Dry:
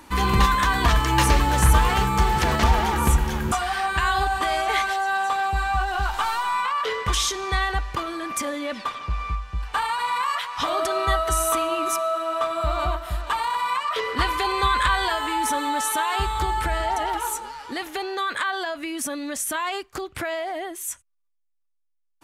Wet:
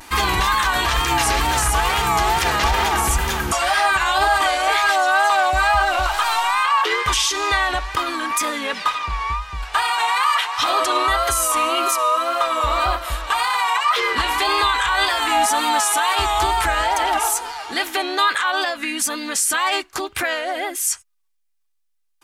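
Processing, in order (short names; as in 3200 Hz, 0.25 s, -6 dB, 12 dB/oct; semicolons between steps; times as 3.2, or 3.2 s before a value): wow and flutter 92 cents; tilt shelf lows -6 dB, about 730 Hz; limiter -14.5 dBFS, peak gain reduction 10.5 dB; comb 2.5 ms, depth 33%; harmoniser -4 st -9 dB; gain +4 dB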